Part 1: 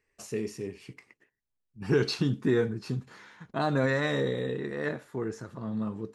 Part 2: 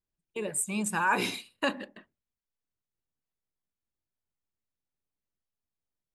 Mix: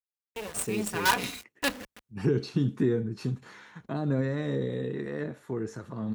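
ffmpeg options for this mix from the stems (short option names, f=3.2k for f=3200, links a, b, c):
-filter_complex "[0:a]bandreject=f=4.9k:w=14,acrossover=split=430[a][b];[b]acompressor=threshold=-41dB:ratio=6[c];[a][c]amix=inputs=2:normalize=0,adelay=350,volume=1.5dB[d];[1:a]aecho=1:1:4.1:0.69,acrusher=bits=4:dc=4:mix=0:aa=0.000001,volume=-1dB[e];[d][e]amix=inputs=2:normalize=0,highpass=42"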